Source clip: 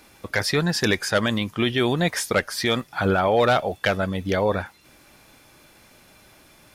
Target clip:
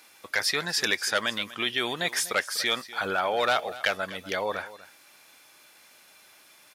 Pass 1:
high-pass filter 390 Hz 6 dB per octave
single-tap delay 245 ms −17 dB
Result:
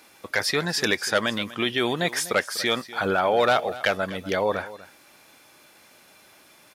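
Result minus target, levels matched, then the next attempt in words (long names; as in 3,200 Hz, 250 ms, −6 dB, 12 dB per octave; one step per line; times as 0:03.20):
500 Hz band +3.5 dB
high-pass filter 1,300 Hz 6 dB per octave
single-tap delay 245 ms −17 dB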